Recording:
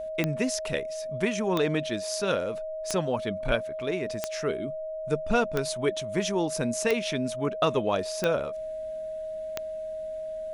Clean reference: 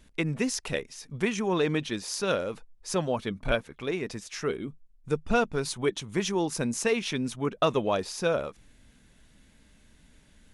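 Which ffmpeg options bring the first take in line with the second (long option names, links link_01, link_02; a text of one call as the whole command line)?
ffmpeg -i in.wav -af "adeclick=threshold=4,bandreject=frequency=630:width=30" out.wav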